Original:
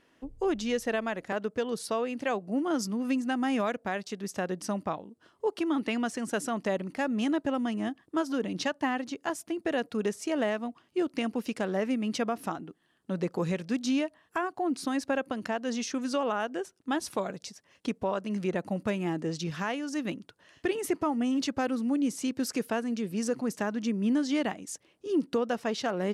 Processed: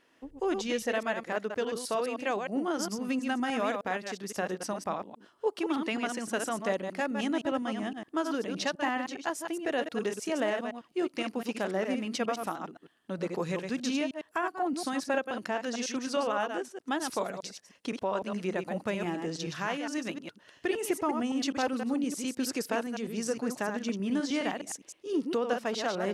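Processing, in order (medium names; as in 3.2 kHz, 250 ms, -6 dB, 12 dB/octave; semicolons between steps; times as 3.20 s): chunks repeated in reverse 103 ms, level -5.5 dB; bass shelf 190 Hz -11 dB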